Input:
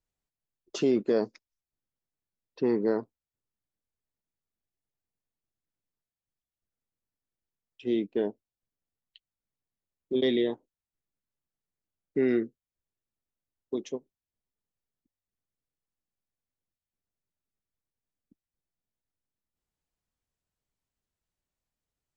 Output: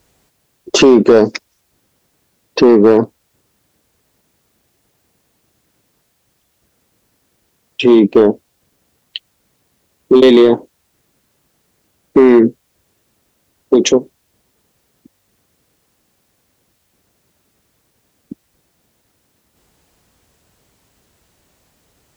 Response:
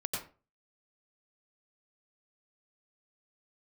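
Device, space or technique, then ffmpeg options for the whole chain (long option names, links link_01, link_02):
mastering chain: -af "highpass=53,equalizer=frequency=400:width_type=o:width=2:gain=3.5,acompressor=threshold=-25dB:ratio=2,asoftclip=type=tanh:threshold=-18dB,asoftclip=type=hard:threshold=-22.5dB,alimiter=level_in=32.5dB:limit=-1dB:release=50:level=0:latency=1,volume=-1dB"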